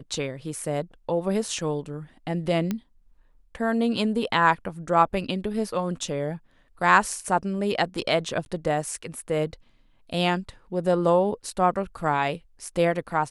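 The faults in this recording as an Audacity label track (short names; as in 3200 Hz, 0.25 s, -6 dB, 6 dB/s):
2.710000	2.710000	pop -14 dBFS
8.450000	8.460000	gap 11 ms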